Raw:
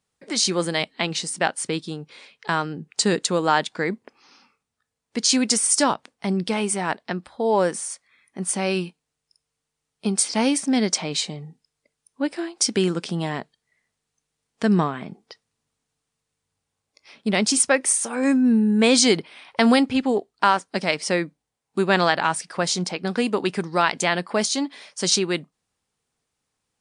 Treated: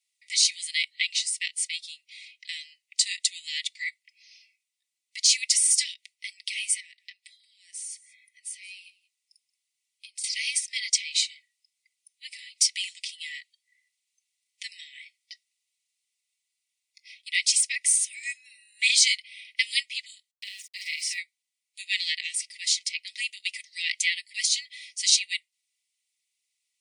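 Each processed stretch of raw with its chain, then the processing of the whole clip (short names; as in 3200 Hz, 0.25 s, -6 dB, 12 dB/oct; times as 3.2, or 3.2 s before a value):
6.8–10.24 compressor 5:1, threshold -35 dBFS + echo 0.178 s -20 dB
20.31–21.18 compressor 3:1, threshold -27 dBFS + sample gate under -48.5 dBFS + doubler 45 ms -2.5 dB
whole clip: Chebyshev high-pass 1900 Hz, order 10; de-esser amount 30%; comb 4 ms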